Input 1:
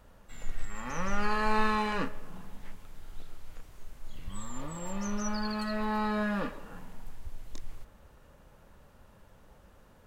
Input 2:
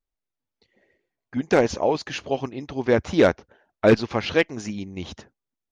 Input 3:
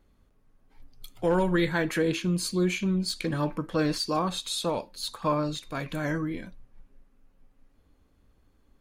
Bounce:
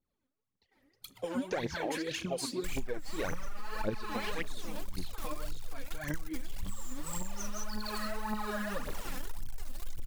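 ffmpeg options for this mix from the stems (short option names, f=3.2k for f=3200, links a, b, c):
-filter_complex "[0:a]highshelf=f=5.3k:g=8,aeval=exprs='0.224*sin(PI/2*1.58*val(0)/0.224)':c=same,acrusher=bits=5:mix=0:aa=0.000001,adelay=2350,volume=-5.5dB[a];[1:a]volume=-12.5dB[b];[2:a]highpass=130,acrossover=split=380|2100[c][d][e];[c]acompressor=threshold=-41dB:ratio=4[f];[d]acompressor=threshold=-41dB:ratio=4[g];[e]acompressor=threshold=-38dB:ratio=4[h];[f][g][h]amix=inputs=3:normalize=0,agate=range=-33dB:threshold=-59dB:ratio=3:detection=peak,volume=-2.5dB[i];[a][i]amix=inputs=2:normalize=0,aphaser=in_gain=1:out_gain=1:delay=2.1:decay=0.2:speed=0.45:type=triangular,acompressor=threshold=-33dB:ratio=5,volume=0dB[j];[b][j]amix=inputs=2:normalize=0,aphaser=in_gain=1:out_gain=1:delay=4.1:decay=0.72:speed=1.8:type=triangular,acompressor=threshold=-30dB:ratio=6"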